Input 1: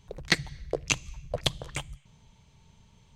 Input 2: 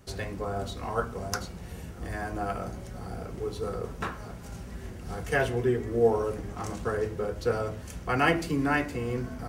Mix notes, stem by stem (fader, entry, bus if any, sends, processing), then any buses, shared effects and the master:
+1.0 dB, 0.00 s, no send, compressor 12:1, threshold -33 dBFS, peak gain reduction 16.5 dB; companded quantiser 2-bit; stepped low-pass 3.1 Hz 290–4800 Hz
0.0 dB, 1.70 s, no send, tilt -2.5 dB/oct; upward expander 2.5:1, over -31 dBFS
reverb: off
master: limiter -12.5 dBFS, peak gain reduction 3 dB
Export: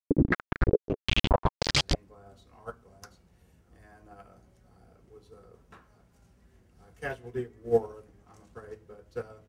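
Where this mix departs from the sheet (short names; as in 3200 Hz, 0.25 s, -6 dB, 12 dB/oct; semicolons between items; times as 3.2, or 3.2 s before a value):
stem 1 +1.0 dB -> +10.0 dB; stem 2: missing tilt -2.5 dB/oct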